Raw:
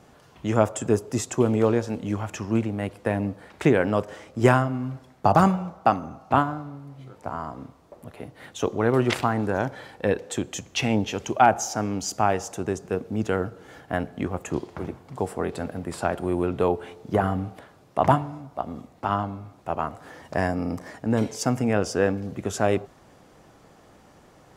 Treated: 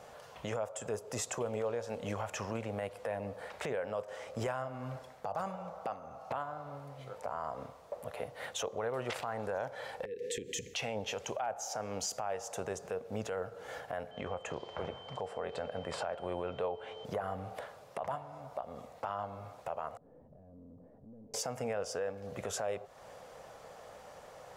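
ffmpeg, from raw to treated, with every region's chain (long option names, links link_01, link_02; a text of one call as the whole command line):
ffmpeg -i in.wav -filter_complex "[0:a]asettb=1/sr,asplit=3[link_01][link_02][link_03];[link_01]atrim=end=10.054[link_04];[link_02]atrim=start=10.05:end=10.74,asetpts=PTS-STARTPTS,afade=type=in:duration=0.004:curve=qsin,afade=type=out:start_time=0.686:duration=0.004:curve=qsin,equalizer=frequency=420:width=0.38:gain=10,acompressor=threshold=-27dB:ratio=16:attack=3.2:release=140:knee=1:detection=peak,asuperstop=centerf=920:order=20:qfactor=0.71[link_05];[link_03]atrim=start=10.736[link_06];[link_04][link_05]acrossfade=duration=0.004:curve1=hsin:curve2=qsin[link_07];[link_07][link_06]acrossfade=duration=0.004:curve1=qsin:curve2=hsin,asettb=1/sr,asplit=3[link_08][link_09][link_10];[link_08]atrim=end=14.114[link_11];[link_09]atrim=start=14.11:end=17.05,asetpts=PTS-STARTPTS,afade=type=in:duration=0.004:curve=qsin,afade=type=out:start_time=2.936:duration=0.004:curve=qsin,lowpass=5200,aeval=exprs='val(0)+0.00251*sin(2*PI*3100*n/s)':channel_layout=same[link_12];[link_10]atrim=start=17.046[link_13];[link_11][link_12]acrossfade=duration=0.004:curve1=hsin:curve2=qsin[link_14];[link_14][link_13]acrossfade=duration=0.004:curve1=qsin:curve2=hsin,asettb=1/sr,asplit=3[link_15][link_16][link_17];[link_15]atrim=end=19.974[link_18];[link_16]atrim=start=19.97:end=21.34,asetpts=PTS-STARTPTS,afade=type=in:duration=0.004:curve=qsin,afade=type=out:start_time=1.366:duration=0.004:curve=qsin,acompressor=threshold=-39dB:ratio=5:attack=3.2:release=140:knee=1:detection=peak,aeval=exprs='(tanh(200*val(0)+0.25)-tanh(0.25))/200':channel_layout=same,lowpass=frequency=260:width_type=q:width=2[link_19];[link_17]atrim=start=21.336[link_20];[link_18][link_19]acrossfade=duration=0.004:curve1=hsin:curve2=qsin[link_21];[link_21][link_20]acrossfade=duration=0.004:curve1=qsin:curve2=hsin,lowshelf=frequency=410:width_type=q:width=3:gain=-7.5,acompressor=threshold=-34dB:ratio=4,alimiter=level_in=3.5dB:limit=-24dB:level=0:latency=1:release=22,volume=-3.5dB,volume=1dB" out.wav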